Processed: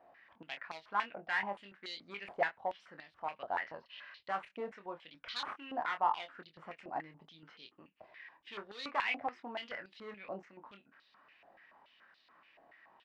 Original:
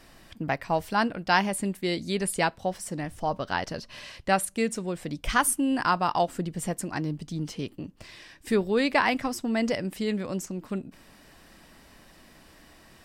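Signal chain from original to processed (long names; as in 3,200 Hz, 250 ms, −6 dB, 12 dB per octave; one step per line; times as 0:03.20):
stylus tracing distortion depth 0.047 ms
high-frequency loss of the air 250 metres
hard clipping −21.5 dBFS, distortion −12 dB
double-tracking delay 25 ms −7 dB
band-pass on a step sequencer 7 Hz 720–4,000 Hz
level +2.5 dB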